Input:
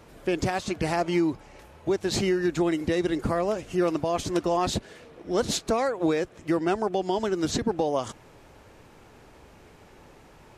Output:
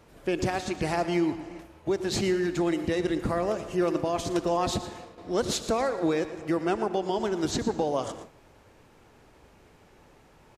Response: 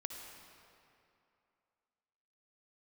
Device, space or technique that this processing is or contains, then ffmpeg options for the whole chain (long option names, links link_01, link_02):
keyed gated reverb: -filter_complex "[0:a]aecho=1:1:116:0.2,asplit=3[link_01][link_02][link_03];[1:a]atrim=start_sample=2205[link_04];[link_02][link_04]afir=irnorm=-1:irlink=0[link_05];[link_03]apad=whole_len=471267[link_06];[link_05][link_06]sidechaingate=range=-33dB:threshold=-47dB:ratio=16:detection=peak,volume=-3.5dB[link_07];[link_01][link_07]amix=inputs=2:normalize=0,volume=-5dB"